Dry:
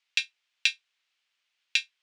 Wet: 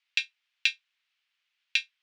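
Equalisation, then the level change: band-pass filter 2.2 kHz, Q 0.61; 0.0 dB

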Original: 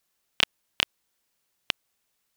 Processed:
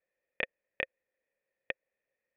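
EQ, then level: cascade formant filter e; +9.0 dB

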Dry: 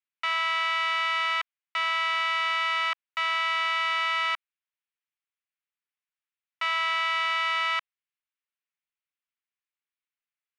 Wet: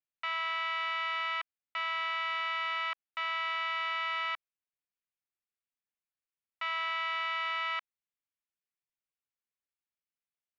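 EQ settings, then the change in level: low-pass 4.2 kHz 12 dB/octave; bass shelf 320 Hz +6.5 dB; -7.0 dB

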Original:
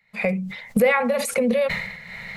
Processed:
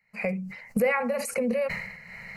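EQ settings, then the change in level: Butterworth band-stop 3.5 kHz, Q 2.6; -6.0 dB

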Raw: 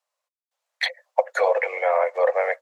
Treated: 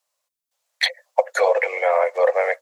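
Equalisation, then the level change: bass shelf 410 Hz +8.5 dB; treble shelf 3 kHz +11.5 dB; -1.0 dB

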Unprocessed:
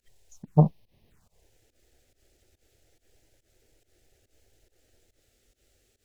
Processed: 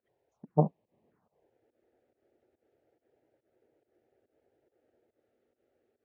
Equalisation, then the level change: high-pass 250 Hz 12 dB/octave; low-pass 1 kHz 12 dB/octave; 0.0 dB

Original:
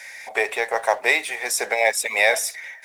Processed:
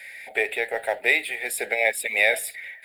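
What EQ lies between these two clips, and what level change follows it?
static phaser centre 2.6 kHz, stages 4; 0.0 dB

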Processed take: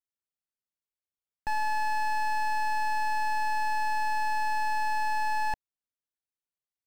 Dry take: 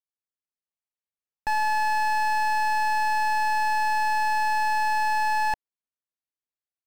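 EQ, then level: bass shelf 300 Hz +6 dB; -6.0 dB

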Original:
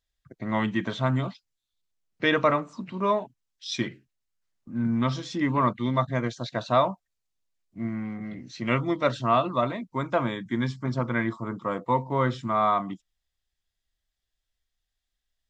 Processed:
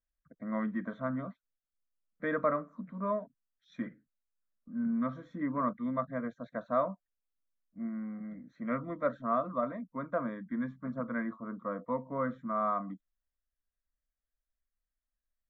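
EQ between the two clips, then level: boxcar filter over 9 samples; distance through air 190 m; static phaser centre 560 Hz, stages 8; -5.0 dB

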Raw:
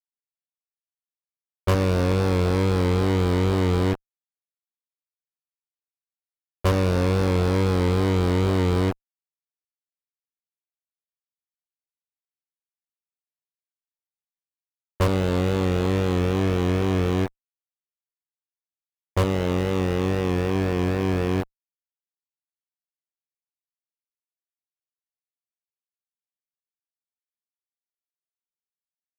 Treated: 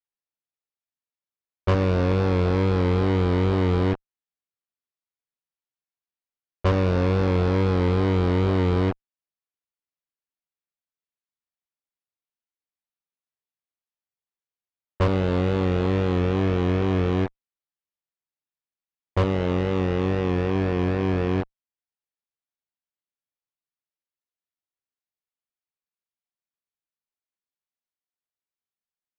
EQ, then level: Gaussian low-pass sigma 1.7 samples; 0.0 dB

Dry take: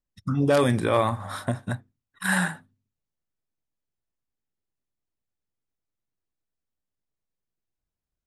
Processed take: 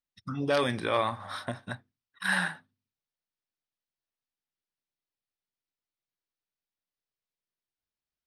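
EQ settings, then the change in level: Savitzky-Golay filter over 15 samples; tilt EQ +2.5 dB/octave; -4.0 dB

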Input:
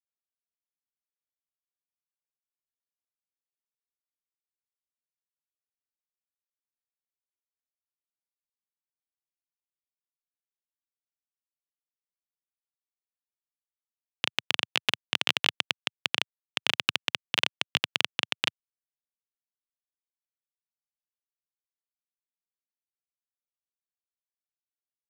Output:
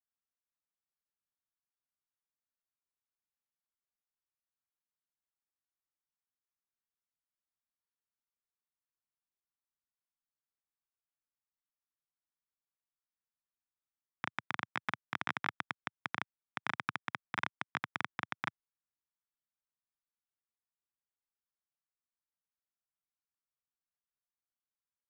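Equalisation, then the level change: Savitzky-Golay filter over 25 samples; static phaser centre 1.2 kHz, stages 4; 0.0 dB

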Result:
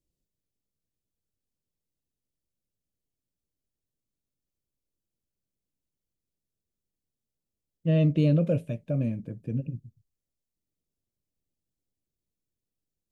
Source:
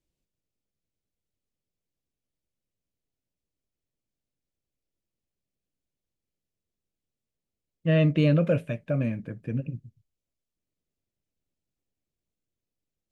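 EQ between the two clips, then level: peaking EQ 1.6 kHz -14 dB 1.7 oct; 0.0 dB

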